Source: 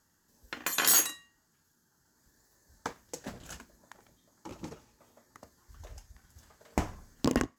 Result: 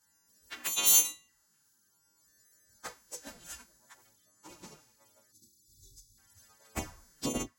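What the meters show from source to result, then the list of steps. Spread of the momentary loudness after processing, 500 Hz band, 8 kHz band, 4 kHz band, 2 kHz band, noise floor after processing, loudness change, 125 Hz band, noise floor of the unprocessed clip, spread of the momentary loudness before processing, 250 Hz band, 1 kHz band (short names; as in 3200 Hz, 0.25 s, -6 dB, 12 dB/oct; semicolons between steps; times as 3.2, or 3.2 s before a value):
24 LU, -6.5 dB, +2.0 dB, 0.0 dB, -6.5 dB, -71 dBFS, +2.0 dB, -7.5 dB, -72 dBFS, 24 LU, -7.0 dB, -7.0 dB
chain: frequency quantiser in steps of 2 st; spectral delete 5.31–6.18, 400–3500 Hz; envelope flanger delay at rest 10.7 ms, full sweep at -25.5 dBFS; gain -3.5 dB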